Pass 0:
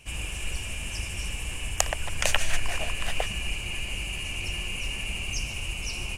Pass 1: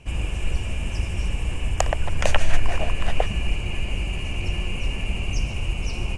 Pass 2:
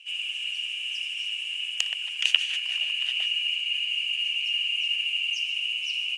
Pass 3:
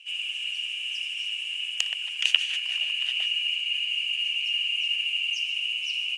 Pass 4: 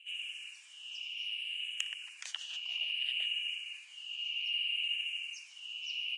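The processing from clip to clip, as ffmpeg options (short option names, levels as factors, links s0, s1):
-af "lowpass=8800,tiltshelf=f=1400:g=7,volume=1.33"
-af "highpass=f=2900:t=q:w=9.2,volume=0.501"
-af anull
-filter_complex "[0:a]asplit=2[s0][s1];[s1]afreqshift=-0.62[s2];[s0][s2]amix=inputs=2:normalize=1,volume=0.447"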